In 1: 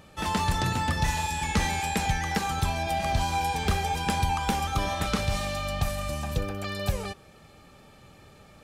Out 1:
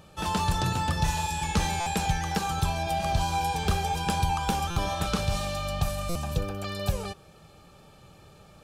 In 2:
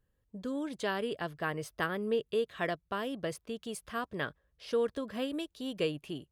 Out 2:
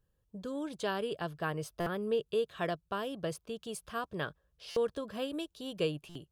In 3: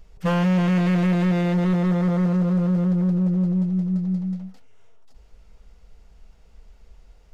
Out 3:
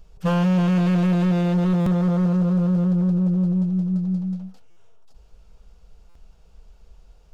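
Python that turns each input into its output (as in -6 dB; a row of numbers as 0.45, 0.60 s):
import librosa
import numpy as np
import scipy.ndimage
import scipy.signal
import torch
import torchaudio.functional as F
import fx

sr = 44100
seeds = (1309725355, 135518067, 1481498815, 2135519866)

y = fx.graphic_eq_31(x, sr, hz=(160, 250, 2000), db=(3, -6, -9))
y = fx.buffer_glitch(y, sr, at_s=(1.8, 4.7, 6.09), block=256, repeats=10)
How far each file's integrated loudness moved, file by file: -0.5, -1.0, +0.5 LU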